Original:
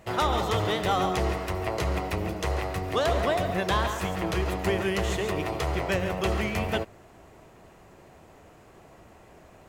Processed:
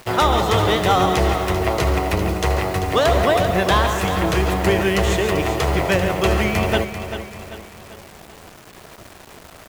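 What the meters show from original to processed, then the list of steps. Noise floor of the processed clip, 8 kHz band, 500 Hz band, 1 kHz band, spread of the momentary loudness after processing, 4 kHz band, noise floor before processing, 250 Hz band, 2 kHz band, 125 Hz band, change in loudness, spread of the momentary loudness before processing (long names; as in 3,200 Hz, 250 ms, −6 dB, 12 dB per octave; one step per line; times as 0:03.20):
−43 dBFS, +9.5 dB, +9.0 dB, +9.0 dB, 8 LU, +9.0 dB, −53 dBFS, +9.0 dB, +9.0 dB, +9.0 dB, +9.0 dB, 5 LU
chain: bit reduction 8 bits
on a send: repeating echo 391 ms, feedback 44%, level −10 dB
on the sum: level +8.5 dB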